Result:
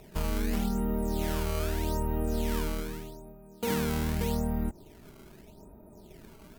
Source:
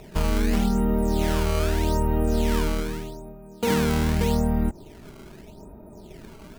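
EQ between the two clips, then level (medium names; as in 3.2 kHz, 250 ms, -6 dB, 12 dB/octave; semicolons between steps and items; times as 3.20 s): peaking EQ 15 kHz +8 dB 0.8 oct; -7.5 dB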